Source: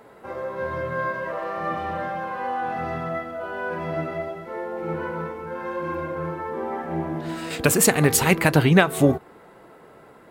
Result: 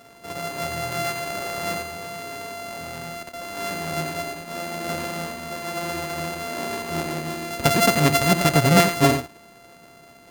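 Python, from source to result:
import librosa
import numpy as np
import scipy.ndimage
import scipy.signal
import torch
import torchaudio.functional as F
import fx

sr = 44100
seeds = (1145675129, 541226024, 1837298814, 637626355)

p1 = np.r_[np.sort(x[:len(x) // 64 * 64].reshape(-1, 64), axis=1).ravel(), x[len(x) // 64 * 64:]]
p2 = fx.level_steps(p1, sr, step_db=17, at=(1.82, 3.57))
y = p2 + fx.echo_single(p2, sr, ms=89, db=-9.0, dry=0)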